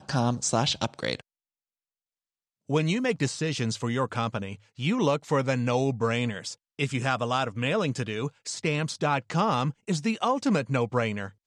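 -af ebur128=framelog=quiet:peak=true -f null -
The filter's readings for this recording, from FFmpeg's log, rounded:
Integrated loudness:
  I:         -27.6 LUFS
  Threshold: -37.7 LUFS
Loudness range:
  LRA:         2.6 LU
  Threshold: -48.2 LUFS
  LRA low:   -30.0 LUFS
  LRA high:  -27.3 LUFS
True peak:
  Peak:      -11.0 dBFS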